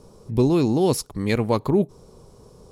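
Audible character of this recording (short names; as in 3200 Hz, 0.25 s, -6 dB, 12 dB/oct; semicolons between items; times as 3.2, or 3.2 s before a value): noise floor -50 dBFS; spectral tilt -7.0 dB/oct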